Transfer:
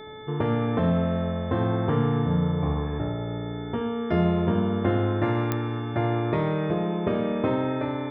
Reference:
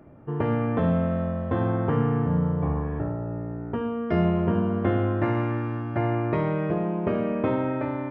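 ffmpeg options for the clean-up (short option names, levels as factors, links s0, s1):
-af "adeclick=t=4,bandreject=f=432.1:t=h:w=4,bandreject=f=864.2:t=h:w=4,bandreject=f=1296.3:t=h:w=4,bandreject=f=1728.4:t=h:w=4,bandreject=f=2160.5:t=h:w=4,bandreject=f=3500:w=30"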